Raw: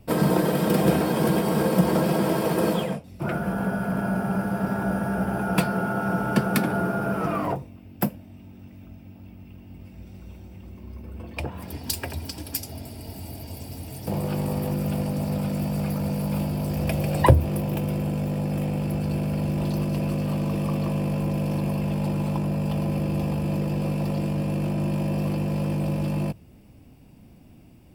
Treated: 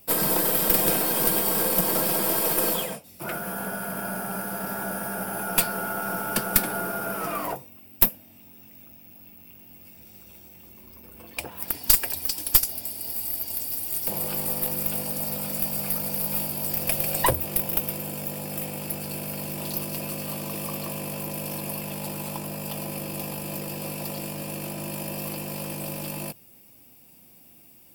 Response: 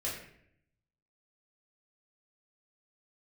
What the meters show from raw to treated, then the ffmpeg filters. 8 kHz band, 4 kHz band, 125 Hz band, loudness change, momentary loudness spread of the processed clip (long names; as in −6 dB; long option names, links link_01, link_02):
+11.5 dB, +4.5 dB, −12.5 dB, 0.0 dB, 12 LU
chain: -af "aemphasis=mode=production:type=riaa,aeval=exprs='(tanh(2.51*val(0)+0.5)-tanh(0.5))/2.51':channel_layout=same"